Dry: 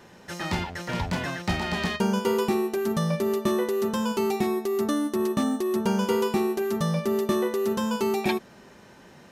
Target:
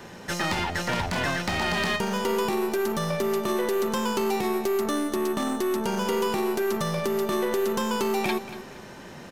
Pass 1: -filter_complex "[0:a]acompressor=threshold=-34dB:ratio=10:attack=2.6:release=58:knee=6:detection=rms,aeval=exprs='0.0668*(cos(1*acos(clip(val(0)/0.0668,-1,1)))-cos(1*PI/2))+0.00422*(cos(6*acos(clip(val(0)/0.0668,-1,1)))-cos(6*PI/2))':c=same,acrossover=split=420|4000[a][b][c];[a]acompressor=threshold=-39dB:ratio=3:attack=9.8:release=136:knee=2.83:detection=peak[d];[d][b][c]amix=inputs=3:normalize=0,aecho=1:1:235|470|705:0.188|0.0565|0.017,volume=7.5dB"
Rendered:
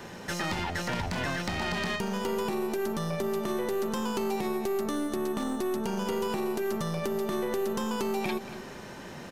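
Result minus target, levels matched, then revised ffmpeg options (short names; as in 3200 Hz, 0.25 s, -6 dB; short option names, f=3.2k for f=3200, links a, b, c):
compressor: peak gain reduction +6.5 dB
-filter_complex "[0:a]acompressor=threshold=-26.5dB:ratio=10:attack=2.6:release=58:knee=6:detection=rms,aeval=exprs='0.0668*(cos(1*acos(clip(val(0)/0.0668,-1,1)))-cos(1*PI/2))+0.00422*(cos(6*acos(clip(val(0)/0.0668,-1,1)))-cos(6*PI/2))':c=same,acrossover=split=420|4000[a][b][c];[a]acompressor=threshold=-39dB:ratio=3:attack=9.8:release=136:knee=2.83:detection=peak[d];[d][b][c]amix=inputs=3:normalize=0,aecho=1:1:235|470|705:0.188|0.0565|0.017,volume=7.5dB"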